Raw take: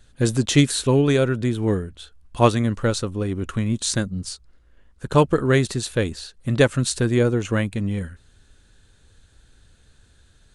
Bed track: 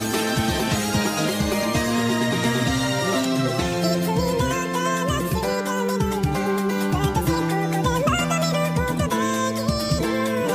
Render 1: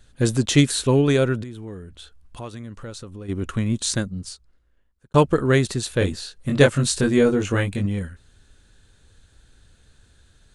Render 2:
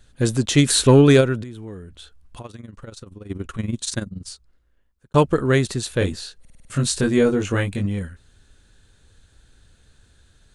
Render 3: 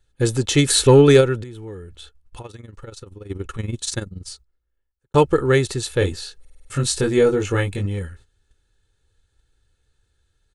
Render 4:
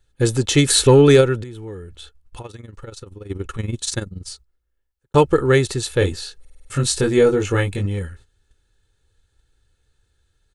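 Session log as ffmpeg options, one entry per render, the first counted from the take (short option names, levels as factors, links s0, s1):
-filter_complex "[0:a]asplit=3[s0][s1][s2];[s0]afade=t=out:st=1.42:d=0.02[s3];[s1]acompressor=threshold=0.0141:ratio=3:attack=3.2:release=140:knee=1:detection=peak,afade=t=in:st=1.42:d=0.02,afade=t=out:st=3.28:d=0.02[s4];[s2]afade=t=in:st=3.28:d=0.02[s5];[s3][s4][s5]amix=inputs=3:normalize=0,asettb=1/sr,asplit=3[s6][s7][s8];[s6]atrim=end=5.994[s9];[s7]atrim=start=5.99:end=7.86,asetpts=PTS-STARTPTS,afade=t=in:d=0.004:c=qsin,afade=t=out:st=1.866:d=0.004:c=qsin,asplit=2[s10][s11];[s11]adelay=21,volume=0.708[s12];[s10][s12]amix=inputs=2:normalize=0,atrim=end_sample=82467[s13];[s8]atrim=start=7.856[s14];[s9][s13]acrossfade=d=0.004:c1=hsin:c2=qsin[s15];[s15][s14]acrossfade=d=0.004:c1=qsin:c2=hsin,asplit=2[s16][s17];[s16]atrim=end=5.14,asetpts=PTS-STARTPTS,afade=t=out:st=3.82:d=1.32[s18];[s17]atrim=start=5.14,asetpts=PTS-STARTPTS,afade=t=in:d=0.004:c=hsin[s19];[s18][s19]concat=n=2:v=0:a=1"
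-filter_complex "[0:a]asplit=3[s0][s1][s2];[s0]afade=t=out:st=0.65:d=0.02[s3];[s1]acontrast=74,afade=t=in:st=0.65:d=0.02,afade=t=out:st=1.2:d=0.02[s4];[s2]afade=t=in:st=1.2:d=0.02[s5];[s3][s4][s5]amix=inputs=3:normalize=0,asettb=1/sr,asplit=3[s6][s7][s8];[s6]atrim=end=2.414[s9];[s7]atrim=start=2.41:end=4.26,asetpts=PTS-STARTPTS,afade=t=in:d=0.004:c=qsin,afade=t=out:st=1.846:d=0.004:c=qsin,tremolo=f=21:d=0.788[s10];[s8]atrim=start=4.256[s11];[s9][s10]acrossfade=d=0.004:c1=hsin:c2=qsin[s12];[s12][s11]acrossfade=d=0.004:c1=qsin:c2=hsin,asplit=7[s13][s14][s15][s16][s17][s18][s19];[s13]atrim=end=6.452[s20];[s14]atrim=start=6.398:end=6.452[s21];[s15]atrim=start=6.398:end=6.452[s22];[s16]atrim=start=6.398:end=6.452[s23];[s17]atrim=start=6.398:end=6.452[s24];[s18]atrim=start=6.398:end=6.452[s25];[s19]atrim=start=6.698[s26];[s20][s21]acrossfade=d=0.004:c1=hsin:c2=hsin[s27];[s27][s22]acrossfade=d=0.004:c1=hsin:c2=hsin[s28];[s28][s23]acrossfade=d=0.004:c1=hsin:c2=hsin[s29];[s29][s24]acrossfade=d=0.004:c1=hsin:c2=hsin[s30];[s30][s25]acrossfade=d=0.004:c1=hsin:c2=hsin[s31];[s31][s26]acrossfade=d=0.004:c1=hsin:c2=hsin"
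-af "agate=range=0.2:threshold=0.00501:ratio=16:detection=peak,aecho=1:1:2.3:0.51"
-af "volume=1.19,alimiter=limit=0.708:level=0:latency=1"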